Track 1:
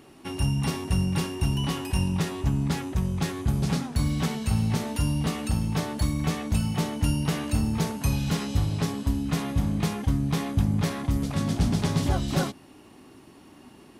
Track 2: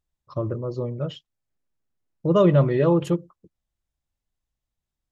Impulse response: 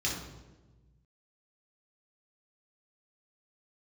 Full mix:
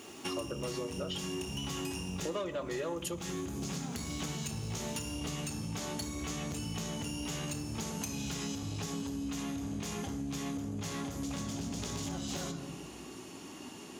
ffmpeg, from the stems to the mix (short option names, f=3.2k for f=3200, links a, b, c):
-filter_complex "[0:a]equalizer=f=6.8k:w=3.5:g=11.5,acompressor=threshold=-30dB:ratio=6,asoftclip=type=hard:threshold=-29.5dB,volume=3dB,asplit=2[a][b];[b]volume=-10dB[c];[1:a]aemphasis=mode=production:type=riaa,aeval=exprs='0.376*(cos(1*acos(clip(val(0)/0.376,-1,1)))-cos(1*PI/2))+0.0335*(cos(5*acos(clip(val(0)/0.376,-1,1)))-cos(5*PI/2))':c=same,volume=1dB,asplit=2[d][e];[e]volume=-20dB[f];[2:a]atrim=start_sample=2205[g];[c][f]amix=inputs=2:normalize=0[h];[h][g]afir=irnorm=-1:irlink=0[i];[a][d][i]amix=inputs=3:normalize=0,highpass=f=360:p=1,acompressor=threshold=-34dB:ratio=8"